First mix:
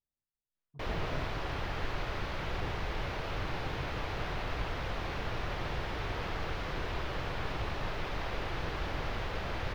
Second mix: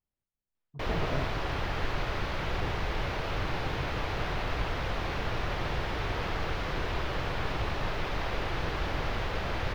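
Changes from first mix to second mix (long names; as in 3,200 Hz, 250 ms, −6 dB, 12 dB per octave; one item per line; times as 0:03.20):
speech +7.0 dB
background +4.0 dB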